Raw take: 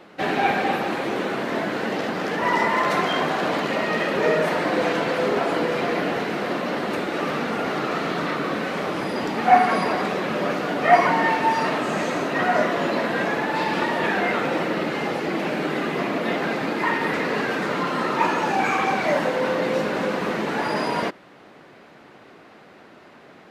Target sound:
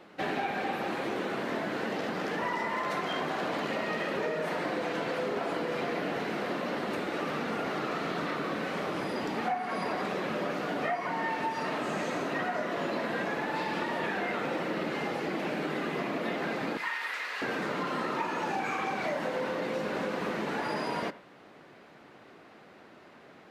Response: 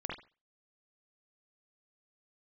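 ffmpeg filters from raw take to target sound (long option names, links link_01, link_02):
-filter_complex "[0:a]asettb=1/sr,asplit=3[link_01][link_02][link_03];[link_01]atrim=end=16.774[link_04];[link_02]atrim=start=16.77:end=17.42,asetpts=PTS-STARTPTS,afade=type=in:duration=0.004:curve=qsin,afade=type=out:start_time=0.646:duration=0.004:curve=qsin,highpass=1400[link_05];[link_03]atrim=start=17.416[link_06];[link_04][link_05]acrossfade=duration=0.004:curve1=hsin:curve2=qsin[link_07];[link_07][link_06]acrossfade=duration=0.004:curve1=qsin:curve2=hsin,acompressor=threshold=-22dB:ratio=12,asplit=2[link_08][link_09];[1:a]atrim=start_sample=2205,adelay=32[link_10];[link_09][link_10]afir=irnorm=-1:irlink=0,volume=-18.5dB[link_11];[link_08][link_11]amix=inputs=2:normalize=0,volume=-6dB"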